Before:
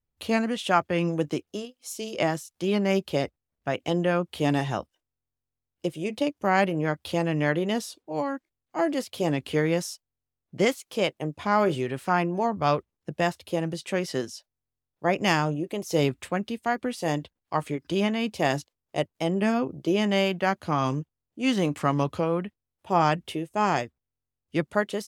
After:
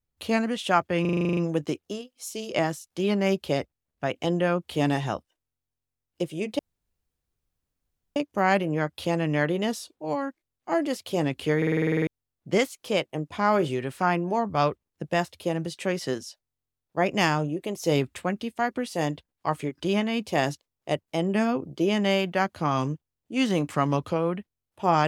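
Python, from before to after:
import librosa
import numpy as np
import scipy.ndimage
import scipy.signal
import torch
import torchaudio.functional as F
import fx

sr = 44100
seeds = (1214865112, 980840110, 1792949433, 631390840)

y = fx.edit(x, sr, fx.stutter(start_s=1.01, slice_s=0.04, count=10),
    fx.insert_room_tone(at_s=6.23, length_s=1.57),
    fx.stutter_over(start_s=9.64, slice_s=0.05, count=10), tone=tone)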